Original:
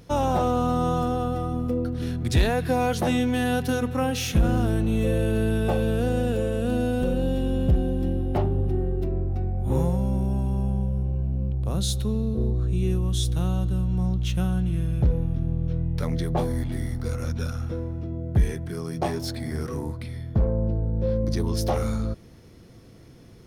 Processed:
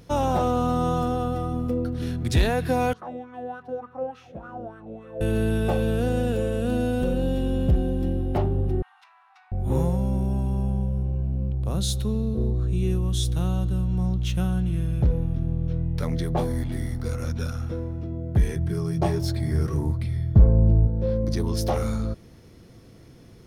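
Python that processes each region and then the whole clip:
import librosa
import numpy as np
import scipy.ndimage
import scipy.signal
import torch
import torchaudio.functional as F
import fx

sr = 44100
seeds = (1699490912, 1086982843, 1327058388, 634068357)

y = fx.chain(x, sr, fx.low_shelf(hz=370.0, db=11.5),
    fx.wah_lfo(hz=3.4, low_hz=550.0, high_hz=1300.0, q=6.6), at=(2.93, 5.21))
y = fx.chain(y, sr, fx.steep_highpass(hz=840.0, slope=96),
    fx.air_absorb(metres=79.0),
    fx.env_flatten(amount_pct=50), at=(8.82, 9.52))
y = fx.chain(y, sr, fx.low_shelf(hz=250.0, db=9.5),
    fx.notch_comb(f0_hz=250.0), at=(18.56, 20.87))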